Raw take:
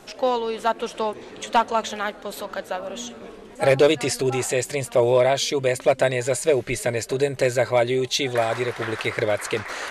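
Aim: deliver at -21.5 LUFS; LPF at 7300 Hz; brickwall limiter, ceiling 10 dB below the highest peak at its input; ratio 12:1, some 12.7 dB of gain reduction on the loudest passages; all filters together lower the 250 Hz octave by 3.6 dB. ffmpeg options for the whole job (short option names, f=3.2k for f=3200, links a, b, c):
-af "lowpass=7.3k,equalizer=f=250:t=o:g=-5.5,acompressor=threshold=-26dB:ratio=12,volume=12.5dB,alimiter=limit=-11dB:level=0:latency=1"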